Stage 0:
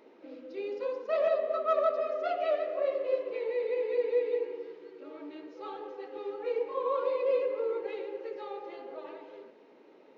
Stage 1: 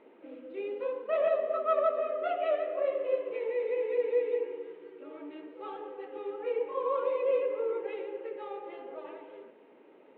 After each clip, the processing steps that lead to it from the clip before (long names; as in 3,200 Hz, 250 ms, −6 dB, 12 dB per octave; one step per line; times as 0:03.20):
Butterworth low-pass 3,400 Hz 48 dB per octave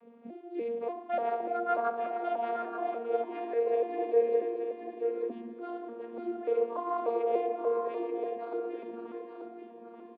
vocoder with an arpeggio as carrier bare fifth, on A#3, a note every 294 ms
on a send: single-tap delay 883 ms −6.5 dB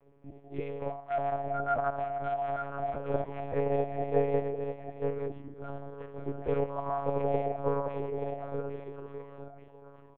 noise reduction from a noise print of the clip's start 6 dB
one-pitch LPC vocoder at 8 kHz 140 Hz